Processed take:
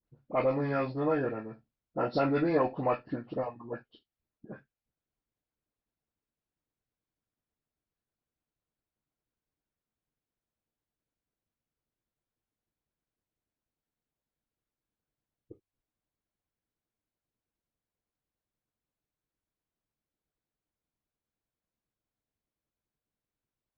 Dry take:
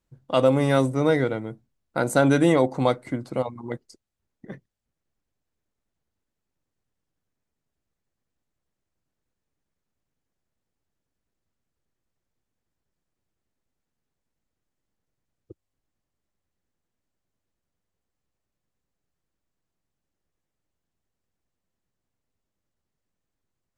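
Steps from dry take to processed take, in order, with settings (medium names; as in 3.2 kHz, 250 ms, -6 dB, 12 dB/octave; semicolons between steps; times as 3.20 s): knee-point frequency compression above 1.2 kHz 1.5:1; tone controls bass -1 dB, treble -12 dB; phase dispersion highs, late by 48 ms, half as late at 1.2 kHz; Chebyshev shaper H 4 -32 dB, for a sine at -7 dBFS; on a send at -5 dB: reverberation, pre-delay 3 ms; on the sum: harmonic-percussive split harmonic -7 dB; trim -4.5 dB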